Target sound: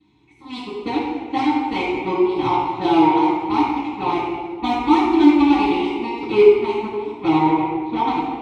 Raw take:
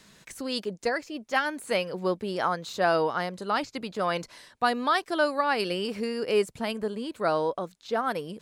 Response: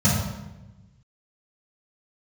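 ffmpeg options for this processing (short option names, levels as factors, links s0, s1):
-filter_complex "[0:a]aeval=exprs='0.299*sin(PI/2*2.24*val(0)/0.299)':c=same,aeval=exprs='0.316*(cos(1*acos(clip(val(0)/0.316,-1,1)))-cos(1*PI/2))+0.126*(cos(3*acos(clip(val(0)/0.316,-1,1)))-cos(3*PI/2))':c=same,asplit=3[s0][s1][s2];[s0]bandpass=f=300:t=q:w=8,volume=1[s3];[s1]bandpass=f=870:t=q:w=8,volume=0.501[s4];[s2]bandpass=f=2240:t=q:w=8,volume=0.355[s5];[s3][s4][s5]amix=inputs=3:normalize=0[s6];[1:a]atrim=start_sample=2205,asetrate=26019,aresample=44100[s7];[s6][s7]afir=irnorm=-1:irlink=0,volume=0.631"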